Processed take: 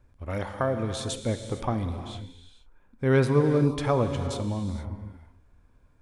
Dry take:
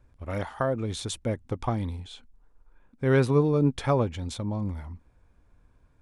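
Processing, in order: non-linear reverb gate 0.49 s flat, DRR 7 dB

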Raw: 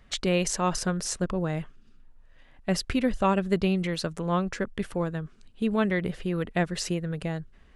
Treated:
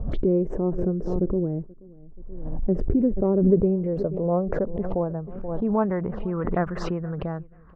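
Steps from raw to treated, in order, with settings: self-modulated delay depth 0.062 ms; envelope phaser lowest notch 320 Hz, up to 4200 Hz, full sweep at -25 dBFS; low-pass sweep 380 Hz -> 1200 Hz, 2.94–6.61; feedback echo 0.48 s, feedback 21%, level -24 dB; backwards sustainer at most 37 dB/s

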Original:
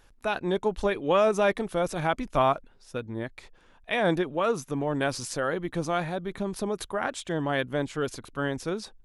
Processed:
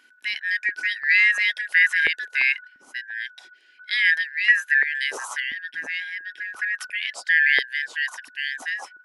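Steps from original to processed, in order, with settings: four-band scrambler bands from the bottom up 4123; 5.4–6.8 tilt -3 dB/oct; stepped high-pass 2.9 Hz 260–1700 Hz

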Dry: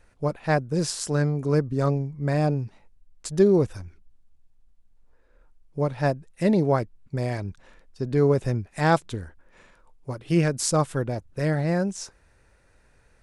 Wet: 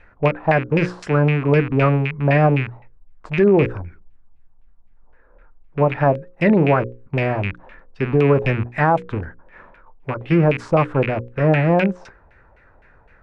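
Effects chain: rattling part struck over -33 dBFS, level -25 dBFS; notches 60/120/180/240/300/360/420/480/540 Hz; LFO low-pass saw down 3.9 Hz 740–2500 Hz; maximiser +13 dB; gain -5.5 dB

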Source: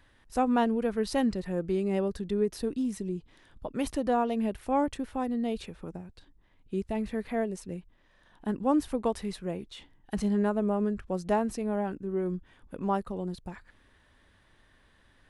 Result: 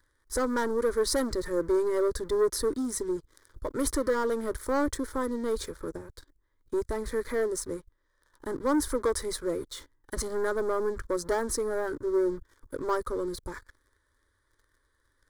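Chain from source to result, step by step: high shelf 3000 Hz +6 dB; sample leveller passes 3; fixed phaser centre 730 Hz, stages 6; gain -2.5 dB

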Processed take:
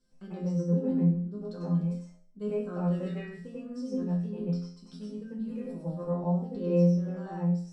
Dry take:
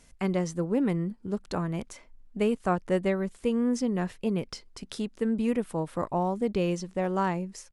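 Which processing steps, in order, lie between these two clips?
2.73–3.4 bell 3200 Hz +9 dB 2.7 oct; resonator bank F3 minor, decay 0.49 s; reverb RT60 0.20 s, pre-delay 91 ms, DRR -6 dB; gain -3.5 dB

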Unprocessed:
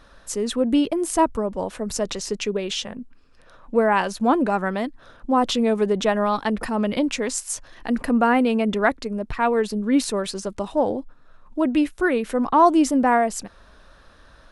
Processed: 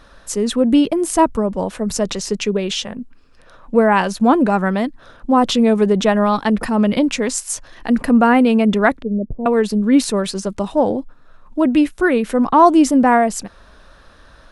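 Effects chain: 9.02–9.46 elliptic low-pass 570 Hz, stop band 60 dB; dynamic EQ 180 Hz, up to +5 dB, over -37 dBFS, Q 1.6; gain +4.5 dB

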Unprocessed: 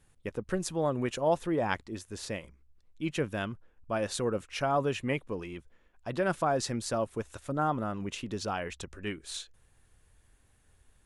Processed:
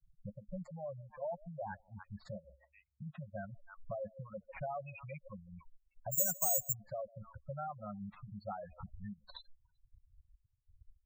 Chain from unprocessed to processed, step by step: median filter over 15 samples; expander -58 dBFS; 2.37–3.45 HPF 43 Hz 24 dB/oct; 4.78–5.28 resonant high shelf 2100 Hz +6 dB, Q 3; delay with a stepping band-pass 0.144 s, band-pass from 440 Hz, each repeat 1.4 oct, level -11 dB; compressor 3:1, threshold -46 dBFS, peak gain reduction 18 dB; hard clip -37.5 dBFS, distortion -19 dB; 6.12–6.73 careless resampling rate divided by 6×, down filtered, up zero stuff; Chebyshev band-stop 210–530 Hz, order 5; bell 4900 Hz -2.5 dB 0.38 oct; spectral gate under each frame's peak -10 dB strong; reverb removal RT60 1.9 s; gain +6.5 dB

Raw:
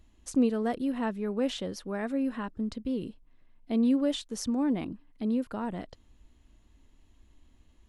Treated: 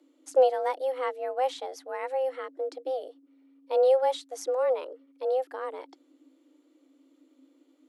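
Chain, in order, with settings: frequency shift +260 Hz; upward expander 1.5:1, over -37 dBFS; gain +4.5 dB

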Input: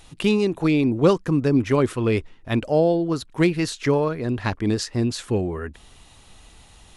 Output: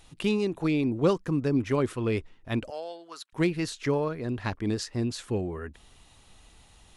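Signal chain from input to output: 2.7–3.33 HPF 1100 Hz 12 dB/oct; gain -6.5 dB

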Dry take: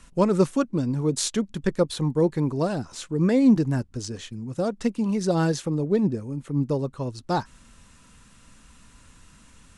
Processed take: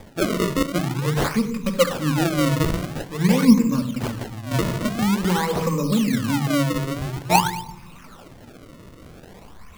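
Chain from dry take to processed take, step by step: moving spectral ripple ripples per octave 0.87, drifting +0.48 Hz, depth 24 dB; low shelf 230 Hz -7.5 dB; shoebox room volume 2600 m³, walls furnished, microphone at 2.3 m; upward compressor, threshold -36 dBFS; ten-band EQ 125 Hz +4 dB, 500 Hz -7 dB, 1000 Hz +5 dB, 2000 Hz +3 dB, 4000 Hz -3 dB, 8000 Hz +3 dB; decimation with a swept rate 31×, swing 160% 0.48 Hz; 4.51–6.99 three-band squash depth 100%; gain -2 dB

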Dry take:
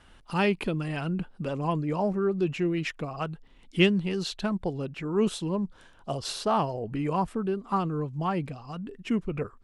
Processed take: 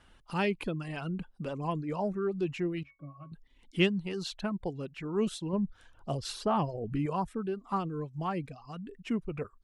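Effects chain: reverb removal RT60 0.52 s; 2.83–3.32 octave resonator C#, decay 0.17 s; 5.53–7.06 low shelf 300 Hz +7 dB; gain -4.5 dB

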